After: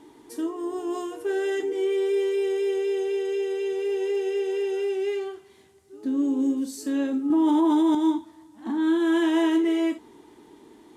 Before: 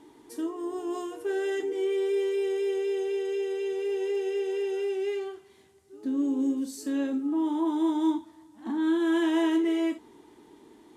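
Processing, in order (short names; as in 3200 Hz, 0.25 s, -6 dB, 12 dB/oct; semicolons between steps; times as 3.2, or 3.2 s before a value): 7.3–7.95 fast leveller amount 100%; gain +3 dB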